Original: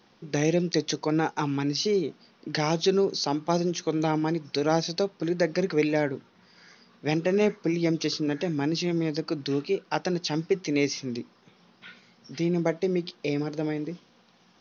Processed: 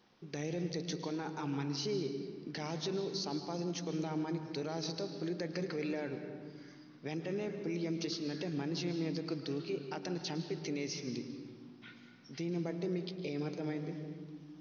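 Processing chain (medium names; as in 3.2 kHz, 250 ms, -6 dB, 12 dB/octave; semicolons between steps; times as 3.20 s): peak limiter -21.5 dBFS, peak gain reduction 11 dB; on a send: reverberation RT60 1.6 s, pre-delay 108 ms, DRR 7.5 dB; on the sum: trim -8 dB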